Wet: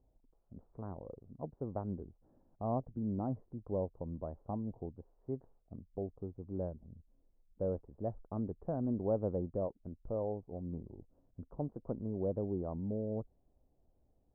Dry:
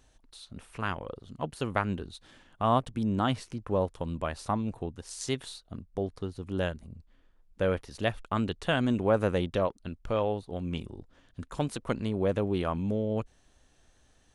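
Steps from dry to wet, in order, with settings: inverse Chebyshev low-pass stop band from 3300 Hz, stop band 70 dB; gain -7.5 dB

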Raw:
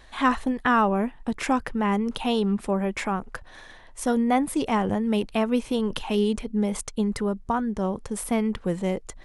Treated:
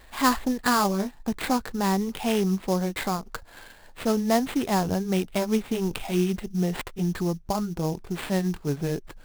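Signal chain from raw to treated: gliding pitch shift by -3.5 st starting unshifted; sample-rate reducer 5900 Hz, jitter 20%

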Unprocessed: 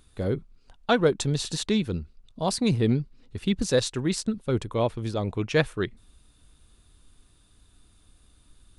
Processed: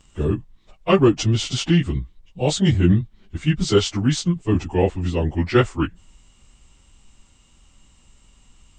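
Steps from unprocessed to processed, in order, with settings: pitch shift by moving bins -4 st; gain +8 dB

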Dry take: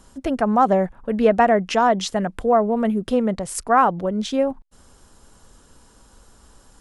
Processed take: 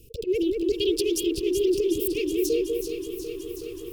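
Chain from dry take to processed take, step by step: auto swell 0.129 s; Chebyshev band-stop 280–1500 Hz, order 5; dynamic EQ 1400 Hz, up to -4 dB, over -45 dBFS, Q 1.4; echo with dull and thin repeats by turns 0.338 s, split 1300 Hz, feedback 52%, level -3.5 dB; speed mistake 45 rpm record played at 78 rpm; lo-fi delay 0.372 s, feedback 80%, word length 9-bit, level -10.5 dB

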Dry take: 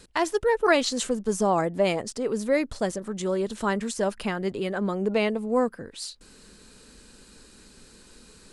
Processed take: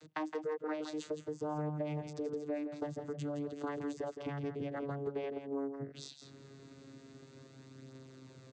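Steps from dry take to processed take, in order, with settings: vocoder on a gliding note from D#3, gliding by -3 st; compressor 5:1, threshold -37 dBFS, peak gain reduction 18 dB; echo 0.166 s -8.5 dB

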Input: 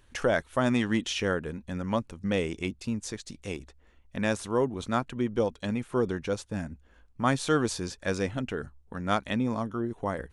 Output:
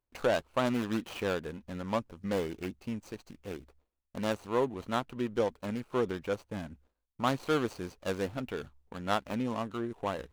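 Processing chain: median filter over 25 samples; gate with hold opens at -48 dBFS; low shelf 410 Hz -9.5 dB; gain +2 dB

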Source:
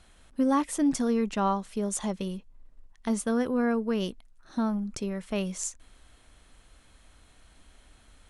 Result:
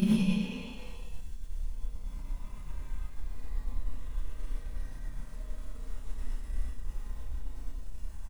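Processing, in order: Paulstretch 16×, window 0.10 s, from 2.39; tilt +2 dB/oct; transient shaper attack +5 dB, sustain -10 dB; low shelf 250 Hz +7.5 dB; loudspeakers at several distances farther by 11 m -5 dB, 30 m -11 dB; non-linear reverb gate 0.14 s rising, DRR -5.5 dB; gain +12.5 dB

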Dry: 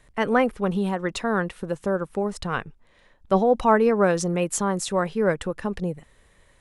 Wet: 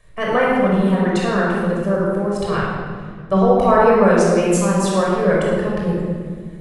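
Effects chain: shoebox room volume 2800 m³, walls mixed, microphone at 5.8 m; gain -2.5 dB

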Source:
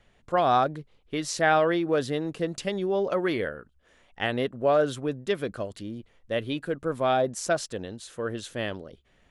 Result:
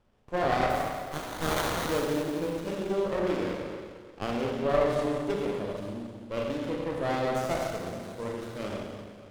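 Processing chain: 0.69–1.88 spectral contrast lowered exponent 0.11; Schroeder reverb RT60 1.9 s, combs from 30 ms, DRR -3 dB; running maximum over 17 samples; gain -6 dB

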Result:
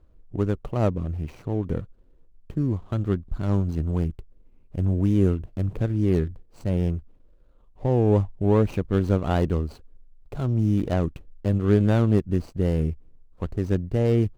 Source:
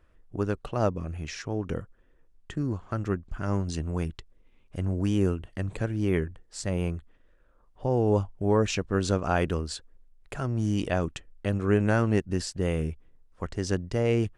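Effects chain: median filter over 25 samples; low shelf 390 Hz +6.5 dB

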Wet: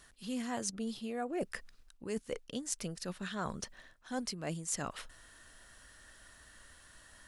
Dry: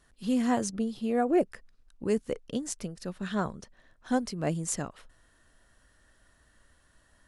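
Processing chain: tilt shelf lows -4.5 dB, about 1100 Hz; reverse; compressor 4:1, threshold -43 dBFS, peak gain reduction 16.5 dB; reverse; gain +6 dB

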